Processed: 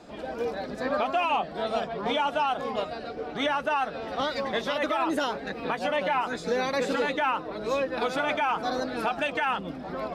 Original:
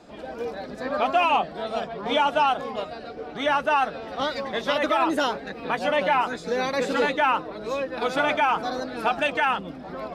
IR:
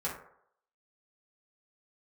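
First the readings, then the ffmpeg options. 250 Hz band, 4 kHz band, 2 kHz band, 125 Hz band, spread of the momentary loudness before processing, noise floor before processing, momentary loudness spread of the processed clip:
-2.0 dB, -3.0 dB, -4.0 dB, -1.0 dB, 12 LU, -39 dBFS, 7 LU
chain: -af "alimiter=limit=-18dB:level=0:latency=1:release=187,volume=1dB"

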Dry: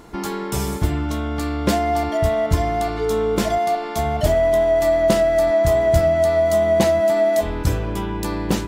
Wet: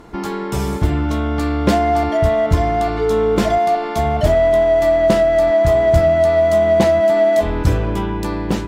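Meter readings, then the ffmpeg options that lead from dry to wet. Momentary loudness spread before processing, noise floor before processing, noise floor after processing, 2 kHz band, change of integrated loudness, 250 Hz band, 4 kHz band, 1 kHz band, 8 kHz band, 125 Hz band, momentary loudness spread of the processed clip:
8 LU, -27 dBFS, -24 dBFS, +3.0 dB, +3.5 dB, +3.5 dB, +0.5 dB, +3.5 dB, n/a, +3.5 dB, 8 LU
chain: -filter_complex "[0:a]aemphasis=mode=reproduction:type=cd,dynaudnorm=f=110:g=13:m=5dB,asplit=2[a][b];[b]asoftclip=type=hard:threshold=-19dB,volume=-10.5dB[c];[a][c]amix=inputs=2:normalize=0"

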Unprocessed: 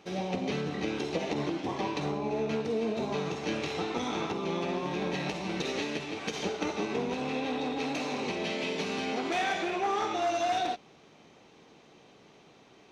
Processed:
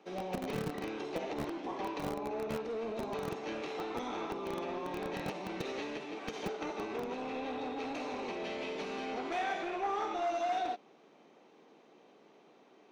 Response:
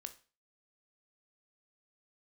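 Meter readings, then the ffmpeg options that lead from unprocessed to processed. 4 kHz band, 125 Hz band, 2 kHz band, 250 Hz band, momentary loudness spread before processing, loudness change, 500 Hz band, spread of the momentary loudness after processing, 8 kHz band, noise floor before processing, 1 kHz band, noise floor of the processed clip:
-9.5 dB, -8.5 dB, -7.0 dB, -7.0 dB, 4 LU, -6.0 dB, -5.0 dB, 5 LU, -10.0 dB, -57 dBFS, -4.0 dB, -62 dBFS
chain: -filter_complex "[0:a]highshelf=f=2k:g=-11,acrossover=split=200|650|3200[a][b][c][d];[a]acrusher=bits=5:mix=0:aa=0.000001[e];[b]asoftclip=type=tanh:threshold=-36dB[f];[e][f][c][d]amix=inputs=4:normalize=0,volume=-1.5dB"

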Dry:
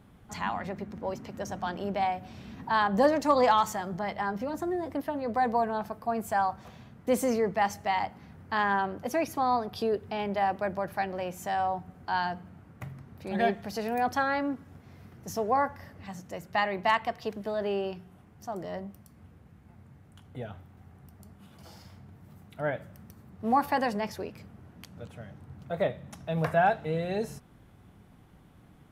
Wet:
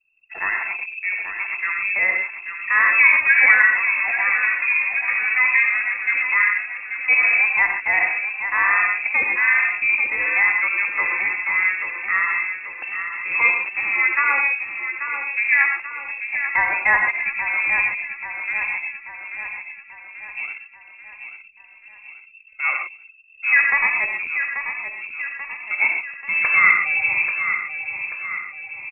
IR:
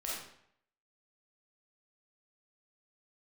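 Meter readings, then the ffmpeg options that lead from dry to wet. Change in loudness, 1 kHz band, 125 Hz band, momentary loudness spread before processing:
+11.5 dB, 0.0 dB, under -15 dB, 18 LU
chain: -filter_complex "[0:a]lowpass=f=2.4k:t=q:w=0.5098,lowpass=f=2.4k:t=q:w=0.6013,lowpass=f=2.4k:t=q:w=0.9,lowpass=f=2.4k:t=q:w=2.563,afreqshift=-2800,asplit=2[a][b];[1:a]atrim=start_sample=2205,atrim=end_sample=3528,asetrate=24255,aresample=44100[c];[b][c]afir=irnorm=-1:irlink=0,volume=-3dB[d];[a][d]amix=inputs=2:normalize=0,anlmdn=2.51,aecho=1:1:836|1672|2508|3344|4180|5016:0.376|0.199|0.106|0.056|0.0297|0.0157,volume=3.5dB"

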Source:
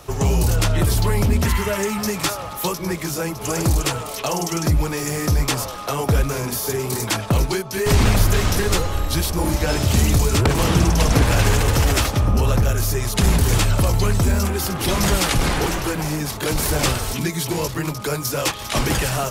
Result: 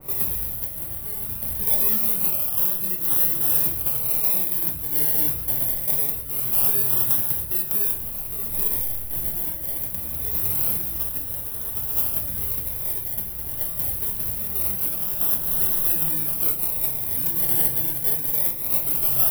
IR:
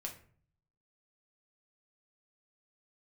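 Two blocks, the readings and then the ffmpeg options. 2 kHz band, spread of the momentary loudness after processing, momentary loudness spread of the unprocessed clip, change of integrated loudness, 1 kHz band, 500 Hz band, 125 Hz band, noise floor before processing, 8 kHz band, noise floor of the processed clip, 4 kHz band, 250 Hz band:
-17.0 dB, 8 LU, 7 LU, 0.0 dB, -16.5 dB, -16.5 dB, -19.0 dB, -31 dBFS, -4.0 dB, -31 dBFS, -15.5 dB, -16.5 dB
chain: -filter_complex "[0:a]equalizer=f=1.7k:w=0.36:g=-9,acompressor=threshold=-28dB:ratio=12,acrossover=split=330[a][b];[a]alimiter=level_in=7.5dB:limit=-24dB:level=0:latency=1:release=412,volume=-7.5dB[c];[c][b]amix=inputs=2:normalize=0,acrusher=samples=27:mix=1:aa=0.000001:lfo=1:lforange=16.2:lforate=0.24,tremolo=f=0.57:d=0.44,aeval=exprs='0.0335*(abs(mod(val(0)/0.0335+3,4)-2)-1)':c=same,aexciter=amount=12.7:drive=9:freq=10k[d];[1:a]atrim=start_sample=2205[e];[d][e]afir=irnorm=-1:irlink=0,adynamicequalizer=threshold=0.002:dfrequency=2600:dqfactor=0.7:tfrequency=2600:tqfactor=0.7:attack=5:release=100:ratio=0.375:range=4:mode=boostabove:tftype=highshelf,volume=1dB"

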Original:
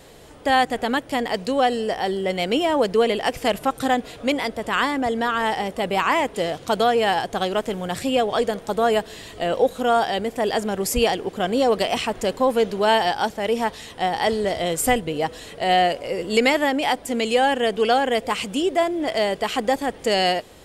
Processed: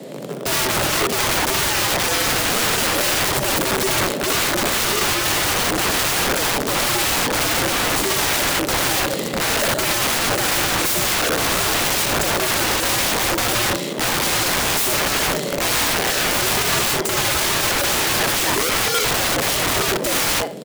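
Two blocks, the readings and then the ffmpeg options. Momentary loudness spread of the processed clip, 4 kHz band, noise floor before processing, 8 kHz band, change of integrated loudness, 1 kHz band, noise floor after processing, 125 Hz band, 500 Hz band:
2 LU, +8.0 dB, -43 dBFS, +16.0 dB, +4.0 dB, -1.0 dB, -25 dBFS, +8.0 dB, -3.5 dB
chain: -filter_complex "[0:a]lowshelf=f=530:t=q:w=1.5:g=10.5,asplit=2[a][b];[b]acrusher=bits=4:mix=0:aa=0.000001,volume=-4dB[c];[a][c]amix=inputs=2:normalize=0,afreqshift=120,asoftclip=type=tanh:threshold=-10dB,aecho=1:1:62|124|186:0.335|0.0938|0.0263,aeval=exprs='(mod(8.41*val(0)+1,2)-1)/8.41':c=same,volume=4dB"

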